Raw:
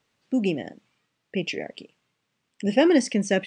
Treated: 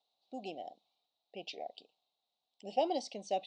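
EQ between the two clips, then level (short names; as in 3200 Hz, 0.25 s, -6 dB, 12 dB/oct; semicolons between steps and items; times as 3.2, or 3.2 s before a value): double band-pass 1700 Hz, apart 2.4 oct; +1.0 dB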